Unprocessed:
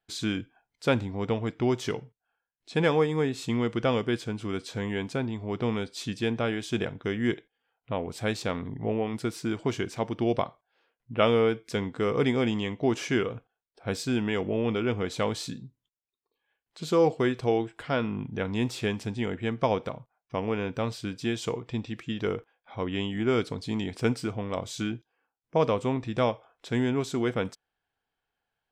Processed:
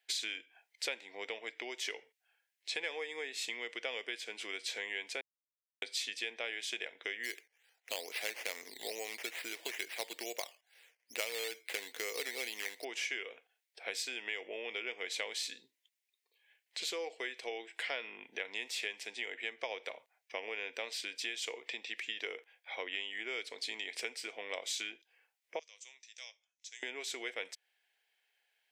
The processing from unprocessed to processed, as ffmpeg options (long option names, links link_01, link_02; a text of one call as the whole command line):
ffmpeg -i in.wav -filter_complex "[0:a]asplit=3[link_01][link_02][link_03];[link_01]afade=type=out:start_time=7.23:duration=0.02[link_04];[link_02]acrusher=samples=9:mix=1:aa=0.000001:lfo=1:lforange=5.4:lforate=2.3,afade=type=in:start_time=7.23:duration=0.02,afade=type=out:start_time=12.83:duration=0.02[link_05];[link_03]afade=type=in:start_time=12.83:duration=0.02[link_06];[link_04][link_05][link_06]amix=inputs=3:normalize=0,asettb=1/sr,asplit=3[link_07][link_08][link_09];[link_07]atrim=end=25.594[link_10];[link_08]atrim=start=25.59:end=26.83,asetpts=PTS-STARTPTS,afade=type=in:duration=0.004:curve=qsin,afade=type=out:start_time=1.236:duration=0.004:curve=qsin,bandpass=frequency=6300:width_type=q:width=6.5[link_11];[link_09]atrim=start=26.826[link_12];[link_10][link_11]acrossfade=duration=0.004:curve1=hsin:curve2=qsin[link_13];[link_13][link_12]acrossfade=duration=0.004:curve1=qsin:curve2=hsin,asplit=3[link_14][link_15][link_16];[link_14]atrim=end=5.21,asetpts=PTS-STARTPTS,afade=type=out:start_time=5.206:duration=0.004:curve=hsin[link_17];[link_15]atrim=start=5.21:end=5.82,asetpts=PTS-STARTPTS,volume=0[link_18];[link_16]atrim=start=5.82,asetpts=PTS-STARTPTS,afade=type=in:duration=0.004:curve=hsin[link_19];[link_17][link_18][link_19]concat=n=3:v=0:a=1,highshelf=frequency=1600:width_type=q:width=3:gain=7.5,acompressor=threshold=-34dB:ratio=10,highpass=frequency=450:width=0.5412,highpass=frequency=450:width=1.3066" out.wav